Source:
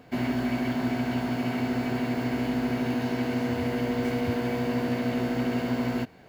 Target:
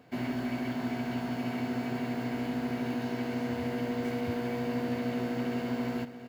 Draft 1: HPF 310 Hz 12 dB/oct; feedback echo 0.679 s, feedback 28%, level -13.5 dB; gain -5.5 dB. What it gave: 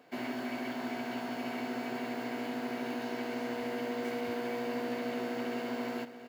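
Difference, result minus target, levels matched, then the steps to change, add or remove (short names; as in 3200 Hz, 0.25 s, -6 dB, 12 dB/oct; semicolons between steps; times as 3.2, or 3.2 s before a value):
125 Hz band -11.0 dB
change: HPF 78 Hz 12 dB/oct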